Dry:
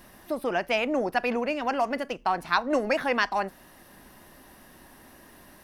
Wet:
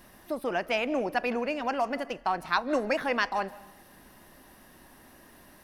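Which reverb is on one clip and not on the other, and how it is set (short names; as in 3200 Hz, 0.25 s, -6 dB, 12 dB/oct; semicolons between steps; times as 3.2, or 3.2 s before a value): digital reverb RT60 0.77 s, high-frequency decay 0.7×, pre-delay 0.115 s, DRR 18.5 dB; gain -2.5 dB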